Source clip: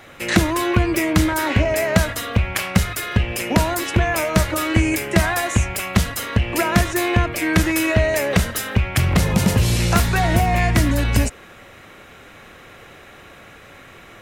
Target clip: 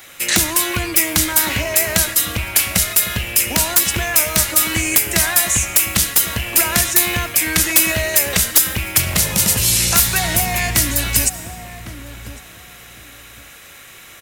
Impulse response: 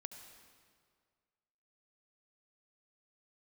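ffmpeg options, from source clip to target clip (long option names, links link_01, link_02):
-filter_complex "[0:a]asplit=2[link_01][link_02];[link_02]adelay=1104,lowpass=frequency=950:poles=1,volume=-11dB,asplit=2[link_03][link_04];[link_04]adelay=1104,lowpass=frequency=950:poles=1,volume=0.23,asplit=2[link_05][link_06];[link_06]adelay=1104,lowpass=frequency=950:poles=1,volume=0.23[link_07];[link_01][link_03][link_05][link_07]amix=inputs=4:normalize=0,asplit=2[link_08][link_09];[1:a]atrim=start_sample=2205,highshelf=frequency=4200:gain=4.5[link_10];[link_09][link_10]afir=irnorm=-1:irlink=0,volume=-3dB[link_11];[link_08][link_11]amix=inputs=2:normalize=0,crystalizer=i=8.5:c=0,aeval=exprs='(mod(0.316*val(0)+1,2)-1)/0.316':channel_layout=same,aeval=exprs='3.35*(cos(1*acos(clip(val(0)/3.35,-1,1)))-cos(1*PI/2))+0.119*(cos(5*acos(clip(val(0)/3.35,-1,1)))-cos(5*PI/2))':channel_layout=same,volume=-11dB"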